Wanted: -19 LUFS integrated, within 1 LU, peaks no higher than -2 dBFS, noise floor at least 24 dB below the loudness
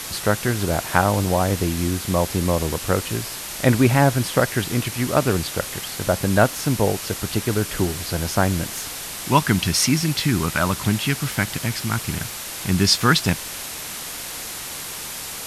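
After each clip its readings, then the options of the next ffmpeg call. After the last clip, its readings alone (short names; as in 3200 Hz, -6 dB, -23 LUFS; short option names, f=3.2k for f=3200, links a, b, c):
noise floor -32 dBFS; noise floor target -46 dBFS; loudness -21.5 LUFS; peak -1.0 dBFS; loudness target -19.0 LUFS
-> -af "afftdn=nr=14:nf=-32"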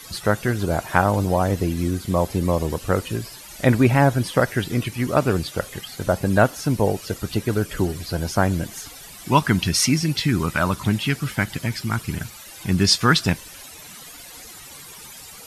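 noise floor -41 dBFS; noise floor target -46 dBFS
-> -af "afftdn=nr=6:nf=-41"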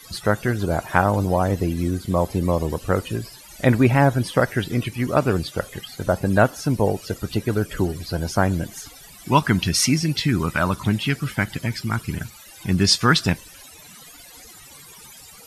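noise floor -45 dBFS; noise floor target -46 dBFS
-> -af "afftdn=nr=6:nf=-45"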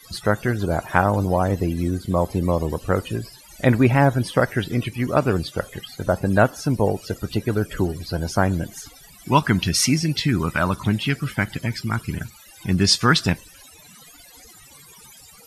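noise floor -48 dBFS; loudness -21.5 LUFS; peak -1.5 dBFS; loudness target -19.0 LUFS
-> -af "volume=2.5dB,alimiter=limit=-2dB:level=0:latency=1"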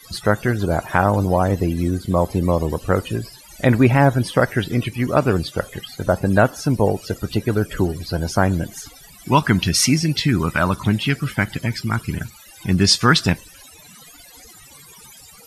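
loudness -19.5 LUFS; peak -2.0 dBFS; noise floor -45 dBFS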